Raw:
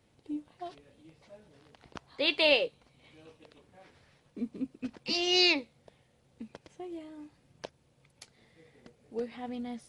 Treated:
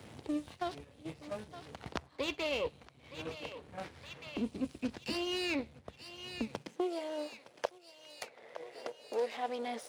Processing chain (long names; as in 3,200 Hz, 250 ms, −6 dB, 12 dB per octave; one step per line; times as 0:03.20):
gain on one half-wave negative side −12 dB
noise gate −57 dBFS, range −10 dB
reversed playback
downward compressor 6 to 1, threshold −38 dBFS, peak gain reduction 16.5 dB
reversed playback
high-pass filter sweep 73 Hz → 530 Hz, 0:06.43–0:06.94
on a send: feedback echo with a high-pass in the loop 913 ms, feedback 61%, high-pass 860 Hz, level −19 dB
on the sum: multiband upward and downward compressor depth 70%
level +9 dB